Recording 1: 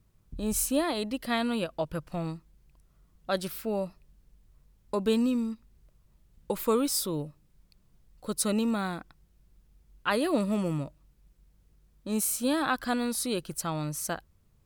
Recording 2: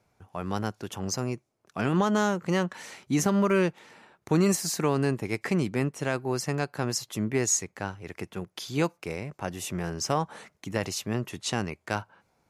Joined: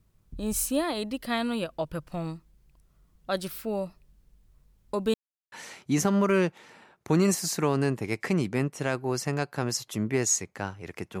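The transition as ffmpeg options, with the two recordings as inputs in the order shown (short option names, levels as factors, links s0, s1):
-filter_complex "[0:a]apad=whole_dur=11.2,atrim=end=11.2,asplit=2[s0][s1];[s0]atrim=end=5.14,asetpts=PTS-STARTPTS,afade=t=out:st=5.136:d=0.004:c=hsin[s2];[s1]atrim=start=5.14:end=5.52,asetpts=PTS-STARTPTS,volume=0[s3];[1:a]atrim=start=2.73:end=8.41,asetpts=PTS-STARTPTS,afade=t=in:d=0.004:c=hsin[s4];[s2][s3][s4]concat=n=3:v=0:a=1"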